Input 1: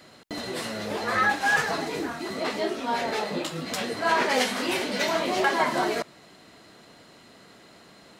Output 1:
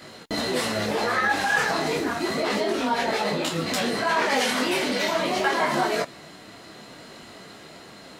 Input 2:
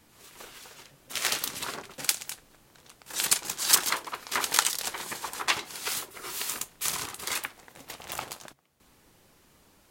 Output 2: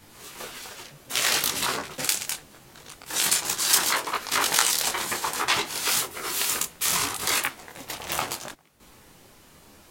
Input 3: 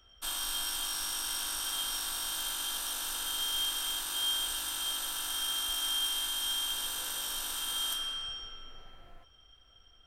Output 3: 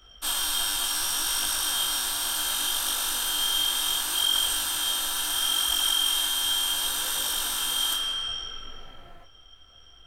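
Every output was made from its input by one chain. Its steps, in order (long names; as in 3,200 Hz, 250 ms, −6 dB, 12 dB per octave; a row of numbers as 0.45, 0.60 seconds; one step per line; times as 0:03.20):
in parallel at +0.5 dB: compressor whose output falls as the input rises −32 dBFS, ratio −1
on the sum: micro pitch shift up and down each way 24 cents
loudness normalisation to −24 LKFS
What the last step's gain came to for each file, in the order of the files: +2.5, +4.5, +5.0 decibels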